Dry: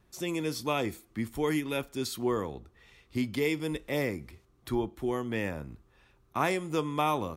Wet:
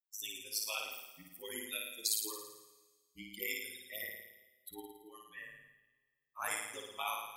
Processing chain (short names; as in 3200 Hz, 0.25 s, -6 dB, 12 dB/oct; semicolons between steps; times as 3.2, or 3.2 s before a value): per-bin expansion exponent 3; differentiator; notches 50/100/150/200 Hz; ring modulator 53 Hz; flutter echo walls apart 9.5 m, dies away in 0.91 s; reverb RT60 1.8 s, pre-delay 28 ms, DRR 16.5 dB; gain +11.5 dB